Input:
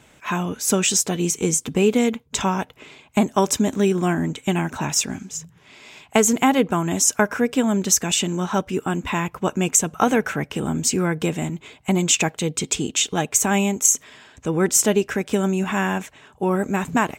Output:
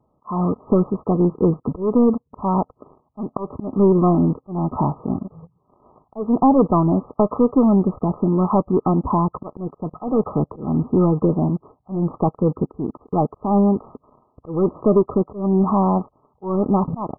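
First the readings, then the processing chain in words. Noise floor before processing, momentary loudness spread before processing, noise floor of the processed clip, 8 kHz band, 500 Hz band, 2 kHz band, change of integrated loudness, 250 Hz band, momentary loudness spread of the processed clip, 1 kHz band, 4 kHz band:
-54 dBFS, 8 LU, -67 dBFS, under -40 dB, +2.5 dB, under -40 dB, +1.0 dB, +3.5 dB, 13 LU, +1.5 dB, under -40 dB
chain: vibrato 0.98 Hz 24 cents; sample leveller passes 3; auto swell 0.232 s; brick-wall FIR low-pass 1300 Hz; gain -4 dB

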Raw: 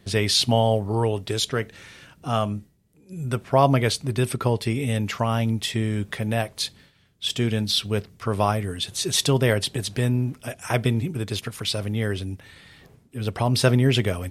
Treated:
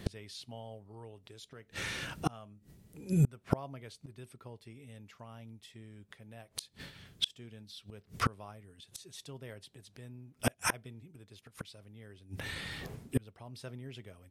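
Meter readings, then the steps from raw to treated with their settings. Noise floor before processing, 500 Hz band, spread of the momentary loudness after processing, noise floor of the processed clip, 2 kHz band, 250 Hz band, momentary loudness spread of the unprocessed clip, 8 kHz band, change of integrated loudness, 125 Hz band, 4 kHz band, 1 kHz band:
-58 dBFS, -21.0 dB, 18 LU, -69 dBFS, -11.5 dB, -14.5 dB, 10 LU, -15.0 dB, -14.5 dB, -15.5 dB, -16.5 dB, -16.0 dB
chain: flipped gate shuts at -23 dBFS, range -34 dB; gain +7 dB

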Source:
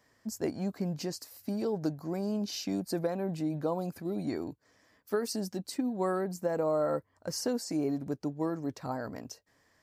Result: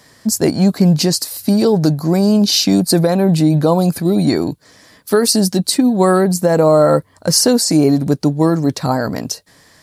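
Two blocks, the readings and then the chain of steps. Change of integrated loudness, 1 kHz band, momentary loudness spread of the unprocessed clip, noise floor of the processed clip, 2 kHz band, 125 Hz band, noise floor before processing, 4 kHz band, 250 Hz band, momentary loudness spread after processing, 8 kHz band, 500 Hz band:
+20.0 dB, +18.0 dB, 7 LU, -50 dBFS, +18.5 dB, +23.0 dB, -71 dBFS, +24.0 dB, +20.0 dB, 7 LU, +24.0 dB, +18.0 dB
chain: fifteen-band EQ 160 Hz +6 dB, 4000 Hz +8 dB, 10000 Hz +11 dB; maximiser +19 dB; gain -1 dB

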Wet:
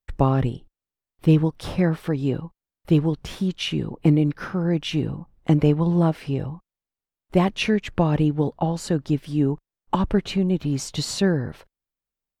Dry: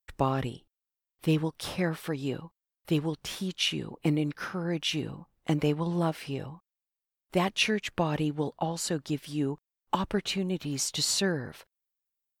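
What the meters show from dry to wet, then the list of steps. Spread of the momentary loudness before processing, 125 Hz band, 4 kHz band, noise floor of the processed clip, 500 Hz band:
9 LU, +10.5 dB, -0.5 dB, under -85 dBFS, +7.0 dB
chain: tilt -2.5 dB/oct; gain +4 dB

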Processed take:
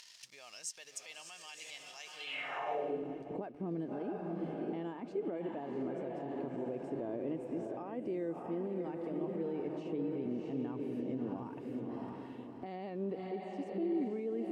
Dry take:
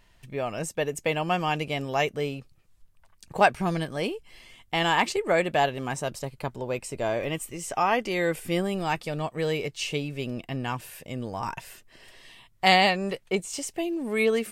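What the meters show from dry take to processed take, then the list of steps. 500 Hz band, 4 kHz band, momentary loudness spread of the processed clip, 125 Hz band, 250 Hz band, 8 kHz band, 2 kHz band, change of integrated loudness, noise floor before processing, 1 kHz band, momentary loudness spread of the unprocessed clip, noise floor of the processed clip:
-11.0 dB, -19.5 dB, 9 LU, -13.5 dB, -5.5 dB, under -10 dB, -20.5 dB, -12.5 dB, -60 dBFS, -18.5 dB, 12 LU, -54 dBFS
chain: upward compressor, threshold -34 dBFS; on a send: diffused feedback echo 0.652 s, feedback 43%, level -5 dB; on the sum: compressor 4:1, threshold -29 dBFS, peak gain reduction 13.5 dB; notches 50/100/150 Hz; in parallel at -9 dB: bit-crush 7-bit; on the sum: limiter -23 dBFS, peak gain reduction 8.5 dB; band-pass sweep 5400 Hz -> 300 Hz, 2.11–3.02; gain +1.5 dB

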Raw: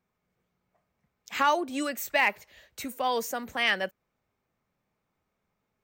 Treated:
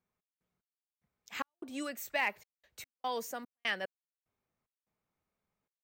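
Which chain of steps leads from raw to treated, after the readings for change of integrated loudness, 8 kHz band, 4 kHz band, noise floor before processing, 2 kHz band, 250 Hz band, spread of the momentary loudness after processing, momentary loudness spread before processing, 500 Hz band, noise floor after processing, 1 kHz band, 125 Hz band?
-9.5 dB, -8.5 dB, -9.5 dB, -81 dBFS, -9.0 dB, -9.5 dB, 14 LU, 13 LU, -10.0 dB, under -85 dBFS, -11.5 dB, n/a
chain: step gate "x.x..xx.xxxx.x.x" 74 bpm -60 dB; gain -8 dB

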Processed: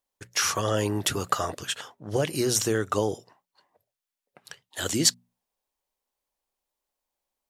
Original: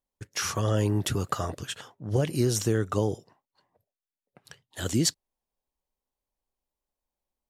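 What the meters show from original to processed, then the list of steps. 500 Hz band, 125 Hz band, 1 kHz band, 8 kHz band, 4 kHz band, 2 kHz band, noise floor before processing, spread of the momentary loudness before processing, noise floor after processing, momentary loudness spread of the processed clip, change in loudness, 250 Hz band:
+2.0 dB, -5.5 dB, +4.5 dB, +5.5 dB, +5.5 dB, +5.0 dB, under -85 dBFS, 12 LU, under -85 dBFS, 10 LU, +2.0 dB, -1.0 dB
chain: low shelf 290 Hz -12 dB; notches 60/120/180/240 Hz; gain +5.5 dB

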